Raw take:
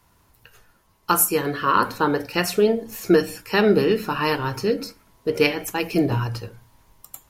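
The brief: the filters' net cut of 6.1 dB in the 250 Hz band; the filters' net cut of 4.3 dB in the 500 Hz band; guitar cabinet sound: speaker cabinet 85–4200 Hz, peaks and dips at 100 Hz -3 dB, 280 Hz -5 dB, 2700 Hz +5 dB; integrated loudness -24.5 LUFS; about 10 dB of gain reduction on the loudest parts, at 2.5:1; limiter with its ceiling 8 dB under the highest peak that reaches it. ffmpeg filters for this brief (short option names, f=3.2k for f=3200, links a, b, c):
-af "equalizer=f=250:t=o:g=-5,equalizer=f=500:t=o:g=-3,acompressor=threshold=-30dB:ratio=2.5,alimiter=limit=-21.5dB:level=0:latency=1,highpass=85,equalizer=f=100:t=q:w=4:g=-3,equalizer=f=280:t=q:w=4:g=-5,equalizer=f=2.7k:t=q:w=4:g=5,lowpass=f=4.2k:w=0.5412,lowpass=f=4.2k:w=1.3066,volume=9.5dB"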